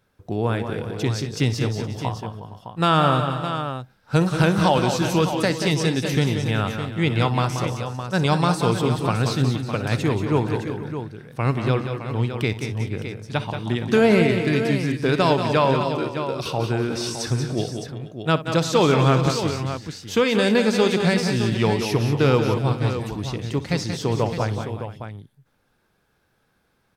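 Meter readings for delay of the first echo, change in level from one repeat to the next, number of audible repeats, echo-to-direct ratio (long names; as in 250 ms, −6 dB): 62 ms, repeats not evenly spaced, 5, −4.0 dB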